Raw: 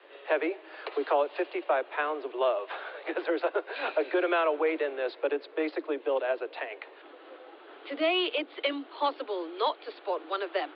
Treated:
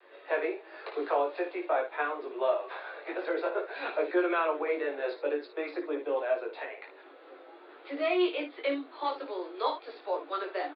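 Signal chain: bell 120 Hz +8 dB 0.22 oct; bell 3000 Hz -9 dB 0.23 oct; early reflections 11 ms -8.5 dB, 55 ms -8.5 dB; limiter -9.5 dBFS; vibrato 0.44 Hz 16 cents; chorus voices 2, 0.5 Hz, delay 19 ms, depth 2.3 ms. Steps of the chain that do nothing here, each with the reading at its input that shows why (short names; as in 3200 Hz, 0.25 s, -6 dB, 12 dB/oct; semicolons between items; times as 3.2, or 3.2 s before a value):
bell 120 Hz: input band starts at 250 Hz; limiter -9.5 dBFS: input peak -12.0 dBFS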